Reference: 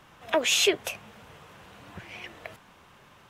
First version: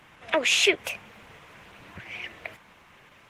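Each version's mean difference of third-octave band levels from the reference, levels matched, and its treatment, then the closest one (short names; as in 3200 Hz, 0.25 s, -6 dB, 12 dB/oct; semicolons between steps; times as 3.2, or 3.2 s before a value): 2.5 dB: bell 2200 Hz +8 dB 0.81 oct; Opus 16 kbps 48000 Hz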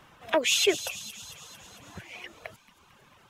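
4.5 dB: reverb removal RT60 1.2 s; on a send: thin delay 0.225 s, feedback 63%, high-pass 4000 Hz, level -9 dB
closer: first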